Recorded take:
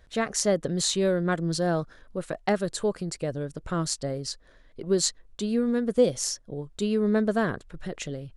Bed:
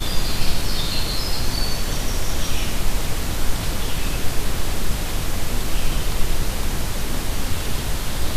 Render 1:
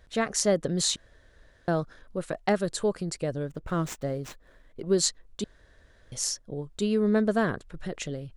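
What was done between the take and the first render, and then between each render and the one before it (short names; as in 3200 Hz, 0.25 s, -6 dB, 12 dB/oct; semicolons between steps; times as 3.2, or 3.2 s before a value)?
0.96–1.68 room tone; 3.45–4.81 median filter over 9 samples; 5.44–6.12 room tone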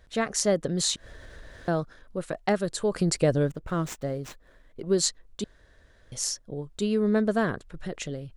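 0.77–1.78 upward compressor, threshold -32 dBFS; 2.92–3.52 gain +8 dB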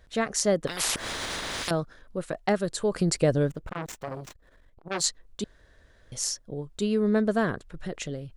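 0.67–1.71 spectral compressor 10:1; 3.69–5.04 core saturation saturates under 2000 Hz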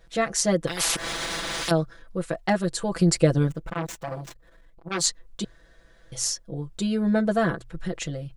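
notches 60/120 Hz; comb 6 ms, depth 98%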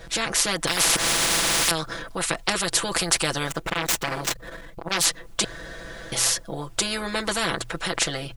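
AGC gain up to 3.5 dB; spectral compressor 4:1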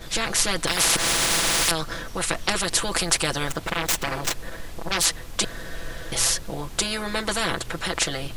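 add bed -16 dB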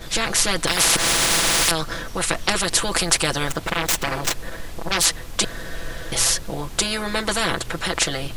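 gain +3 dB; limiter -2 dBFS, peak gain reduction 1.5 dB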